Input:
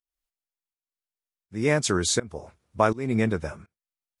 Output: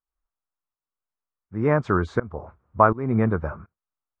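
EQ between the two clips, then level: resonant low-pass 1.2 kHz, resonance Q 2.6; bass shelf 110 Hz +9.5 dB; 0.0 dB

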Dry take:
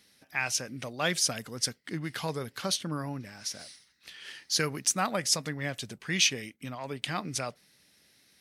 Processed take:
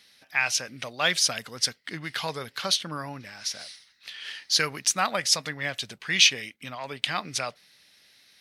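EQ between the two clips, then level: FFT filter 330 Hz 0 dB, 630 Hz +6 dB, 3.9 kHz +12 dB, 7.7 kHz +4 dB; -3.5 dB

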